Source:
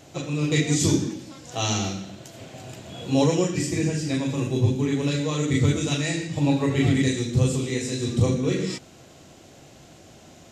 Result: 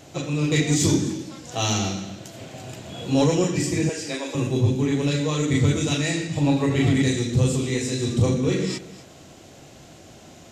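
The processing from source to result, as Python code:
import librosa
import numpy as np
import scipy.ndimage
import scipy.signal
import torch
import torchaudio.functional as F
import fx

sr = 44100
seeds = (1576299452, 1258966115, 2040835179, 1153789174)

p1 = fx.highpass(x, sr, hz=360.0, slope=24, at=(3.89, 4.35))
p2 = p1 + 10.0 ** (-18.0 / 20.0) * np.pad(p1, (int(255 * sr / 1000.0), 0))[:len(p1)]
p3 = 10.0 ** (-19.5 / 20.0) * np.tanh(p2 / 10.0 ** (-19.5 / 20.0))
p4 = p2 + (p3 * 10.0 ** (-3.5 / 20.0))
y = p4 * 10.0 ** (-2.0 / 20.0)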